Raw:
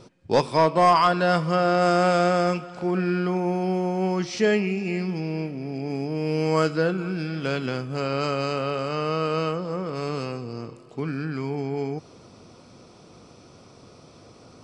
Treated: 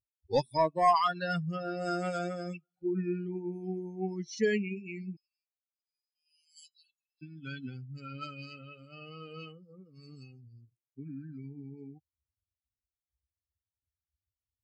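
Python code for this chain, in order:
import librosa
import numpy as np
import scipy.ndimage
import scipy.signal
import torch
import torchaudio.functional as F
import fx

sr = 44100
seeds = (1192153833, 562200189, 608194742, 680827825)

y = fx.bin_expand(x, sr, power=3.0)
y = fx.cheby_ripple_highpass(y, sr, hz=2800.0, ripple_db=6, at=(5.15, 7.21), fade=0.02)
y = F.gain(torch.from_numpy(y), -3.5).numpy()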